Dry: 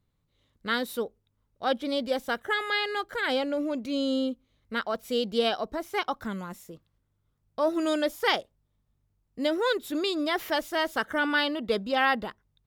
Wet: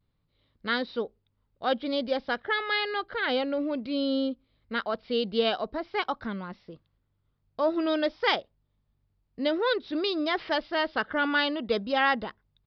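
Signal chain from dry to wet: downsampling 11025 Hz; vibrato 0.52 Hz 35 cents

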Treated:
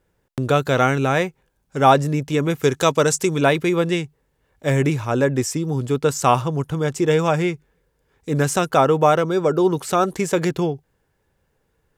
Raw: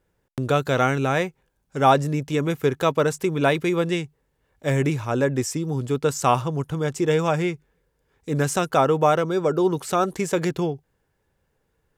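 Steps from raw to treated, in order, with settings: 2.62–3.41 bell 6800 Hz +11 dB 1.5 oct; gain +3 dB

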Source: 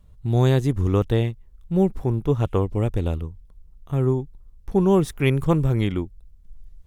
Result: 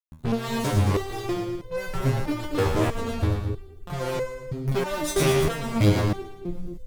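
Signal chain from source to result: fuzz box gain 38 dB, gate -42 dBFS; split-band echo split 510 Hz, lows 0.231 s, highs 0.113 s, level -5 dB; stepped resonator 3.1 Hz 79–510 Hz; gain +2.5 dB

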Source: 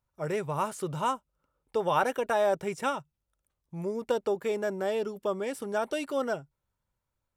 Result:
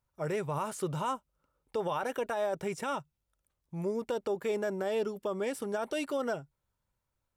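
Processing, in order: limiter -24 dBFS, peak gain reduction 10.5 dB

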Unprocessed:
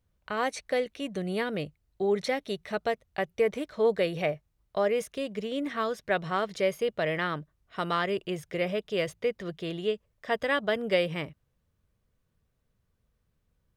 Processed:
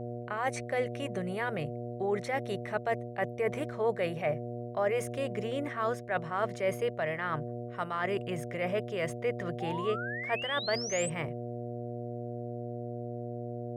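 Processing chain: ten-band EQ 125 Hz +6 dB, 250 Hz -9 dB, 500 Hz -10 dB, 2000 Hz +4 dB, 4000 Hz -8 dB, 8000 Hz +4 dB; buzz 120 Hz, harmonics 6, -42 dBFS -7 dB/oct; reverse; compressor 12:1, threshold -34 dBFS, peak gain reduction 12 dB; reverse; bell 580 Hz +13.5 dB 2.2 oct; painted sound rise, 9.6–11.1, 740–8400 Hz -37 dBFS; gain -1.5 dB

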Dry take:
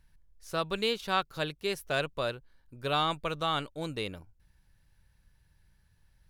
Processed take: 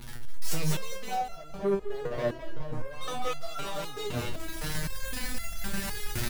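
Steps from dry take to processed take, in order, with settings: zero-crossing step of -42.5 dBFS; recorder AGC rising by 23 dB/s; 0.92–3.01 LPF 1000 Hz 24 dB/oct; compressor, threshold -26 dBFS, peak gain reduction 3.5 dB; sample leveller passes 5; feedback echo 0.208 s, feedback 47%, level -5 dB; stepped resonator 3.9 Hz 120–680 Hz

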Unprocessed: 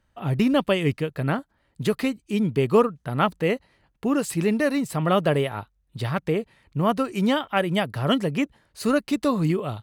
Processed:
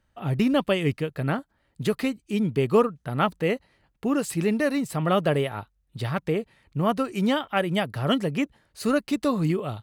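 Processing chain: notch 1000 Hz, Q 20; gain -1.5 dB

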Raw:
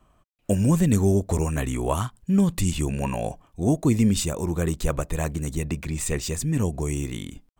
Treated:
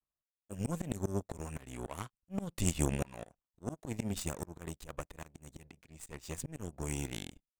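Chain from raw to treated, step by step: power-law curve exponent 2; auto swell 0.72 s; gain +10.5 dB

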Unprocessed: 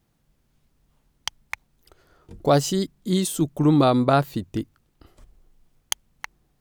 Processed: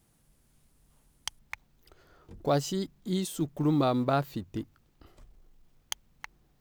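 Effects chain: G.711 law mismatch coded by mu; bell 9800 Hz +10.5 dB 0.77 oct, from 1.39 s -4.5 dB; gain -8.5 dB

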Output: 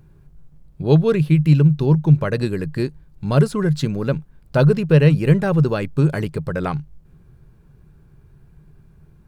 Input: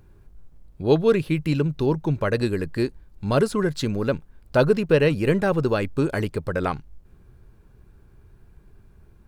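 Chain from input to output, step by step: bell 150 Hz +14 dB 0.38 oct

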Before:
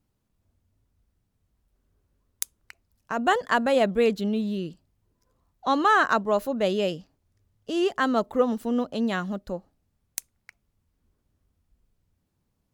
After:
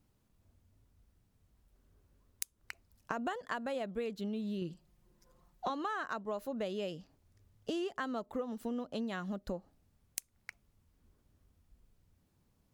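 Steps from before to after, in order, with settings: 4.61–5.7 comb 5.6 ms, depth 74%; compressor 16:1, threshold -36 dBFS, peak gain reduction 21 dB; gain +2 dB

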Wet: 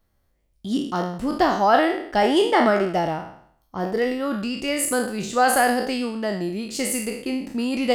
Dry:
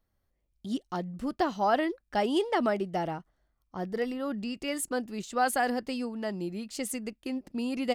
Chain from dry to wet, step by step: spectral trails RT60 0.62 s; gain +7 dB

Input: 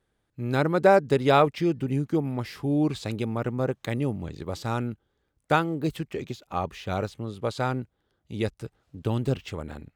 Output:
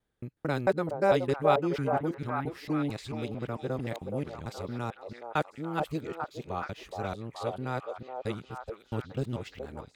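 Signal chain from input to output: local time reversal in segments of 0.223 s; delay with a stepping band-pass 0.422 s, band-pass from 620 Hz, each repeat 0.7 oct, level -1.5 dB; gain -6.5 dB

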